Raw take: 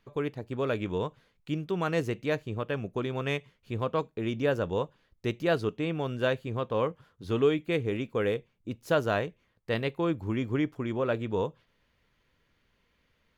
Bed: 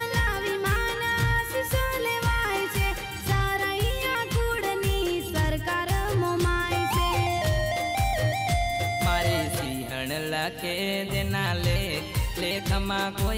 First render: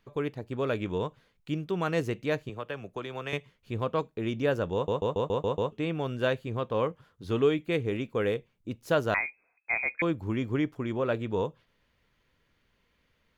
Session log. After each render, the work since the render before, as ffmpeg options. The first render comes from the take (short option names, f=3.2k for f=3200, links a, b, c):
-filter_complex "[0:a]asettb=1/sr,asplit=3[a][b][c];[a]atrim=end=2.494[d];[b]atrim=start=2.49:end=3.33,asetpts=PTS-STARTPTS,afade=t=in:d=0.004:c=qsin,afade=t=out:st=0.836:d=0.004:c=qsin,acrossover=split=96|460[e][f][g];[e]acompressor=threshold=-56dB:ratio=4[h];[f]acompressor=threshold=-44dB:ratio=4[i];[g]acompressor=threshold=-33dB:ratio=4[j];[h][i][j]amix=inputs=3:normalize=0[k];[c]atrim=start=3.326[l];[d][k]acrossfade=d=0.004:c1=hsin:c2=qsin[m];[m][l]acrossfade=d=0.004:c1=qsin:c2=hsin,asettb=1/sr,asplit=3[n][o][p];[n]atrim=end=9.144[q];[o]atrim=start=9.14:end=10.02,asetpts=PTS-STARTPTS,afade=t=in:d=0.004:c=qsin,afade=t=out:st=0.876:d=0.004:c=qsin,lowpass=f=2.2k:t=q:w=0.5098,lowpass=f=2.2k:t=q:w=0.6013,lowpass=f=2.2k:t=q:w=0.9,lowpass=f=2.2k:t=q:w=2.563,afreqshift=-2600[r];[p]atrim=start=10.016[s];[q][r]acrossfade=d=0.004:c1=hsin:c2=qsin[t];[t][s]acrossfade=d=0.004:c1=qsin:c2=hsin,asplit=8[u][v][w][x][y][z][aa][ab];[u]atrim=end=4.882[ac];[v]atrim=start=4.738:end=4.882[ad];[w]atrim=start=4.738:end=4.882[ae];[x]atrim=start=4.738:end=4.882[af];[y]atrim=start=4.738:end=4.882[ag];[z]atrim=start=4.738:end=4.882[ah];[aa]atrim=start=4.738:end=4.882[ai];[ab]atrim=start=5.718[aj];[ac][ad]acrossfade=d=0.004:c1=hsin:c2=hsin[ak];[ak][ae]acrossfade=d=0.004:c1=hsin:c2=hsin[al];[al][af]acrossfade=d=0.004:c1=hsin:c2=hsin[am];[am][ag]acrossfade=d=0.004:c1=hsin:c2=hsin[an];[an][ah]acrossfade=d=0.004:c1=hsin:c2=hsin[ao];[ao][ai]acrossfade=d=0.004:c1=hsin:c2=hsin[ap];[ap][aj]acrossfade=d=0.004:c1=hsin:c2=hsin"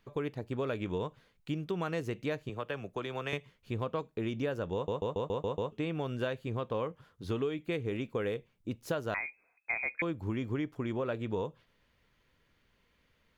-af "acompressor=threshold=-30dB:ratio=6"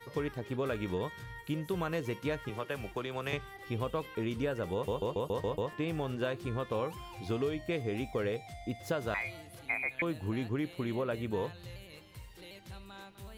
-filter_complex "[1:a]volume=-22.5dB[a];[0:a][a]amix=inputs=2:normalize=0"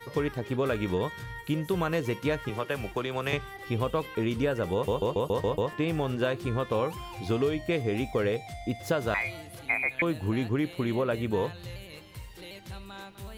-af "volume=6dB"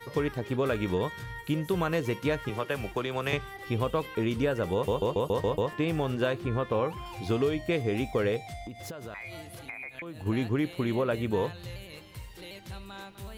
-filter_complex "[0:a]asettb=1/sr,asplit=3[a][b][c];[a]atrim=end=6.384[d];[b]atrim=start=6.38:end=7.06,asetpts=PTS-STARTPTS,afade=t=in:d=0.004:c=qsin,afade=t=out:st=0.676:d=0.004:c=qsin,acrossover=split=3200[e][f];[f]acompressor=threshold=-58dB:ratio=4:attack=1:release=60[g];[e][g]amix=inputs=2:normalize=0[h];[c]atrim=start=7.056[i];[d][h]acrossfade=d=0.004:c1=hsin:c2=qsin[j];[j][i]acrossfade=d=0.004:c1=qsin:c2=hsin,asplit=3[k][l][m];[k]afade=t=out:st=8.63:d=0.02[n];[l]acompressor=threshold=-36dB:ratio=10:attack=3.2:release=140:knee=1:detection=peak,afade=t=in:st=8.63:d=0.02,afade=t=out:st=10.25:d=0.02[o];[m]afade=t=in:st=10.25:d=0.02[p];[n][o][p]amix=inputs=3:normalize=0"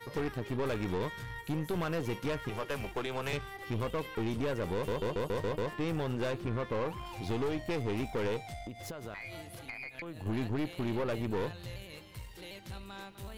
-af "aeval=exprs='(tanh(28.2*val(0)+0.55)-tanh(0.55))/28.2':c=same"